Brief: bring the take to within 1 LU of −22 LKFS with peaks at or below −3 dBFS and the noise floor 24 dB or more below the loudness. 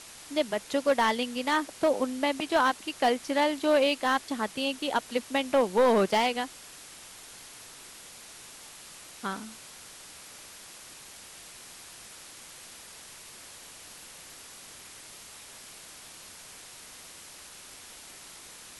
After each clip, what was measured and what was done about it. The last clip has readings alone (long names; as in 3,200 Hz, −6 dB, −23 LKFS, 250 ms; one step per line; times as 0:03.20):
share of clipped samples 0.3%; peaks flattened at −17.0 dBFS; background noise floor −48 dBFS; target noise floor −52 dBFS; integrated loudness −27.5 LKFS; sample peak −17.0 dBFS; target loudness −22.0 LKFS
→ clipped peaks rebuilt −17 dBFS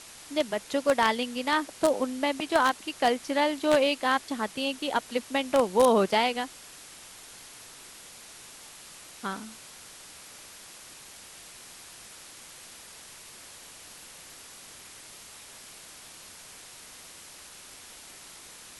share of clipped samples 0.0%; background noise floor −48 dBFS; target noise floor −51 dBFS
→ noise reduction from a noise print 6 dB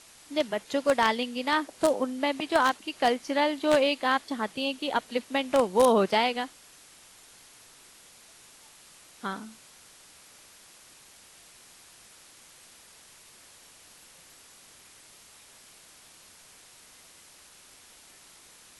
background noise floor −54 dBFS; integrated loudness −26.5 LKFS; sample peak −8.0 dBFS; target loudness −22.0 LKFS
→ level +4.5 dB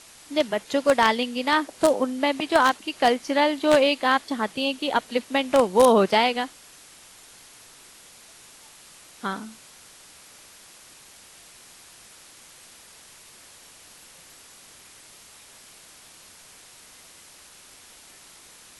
integrated loudness −22.0 LKFS; sample peak −3.5 dBFS; background noise floor −50 dBFS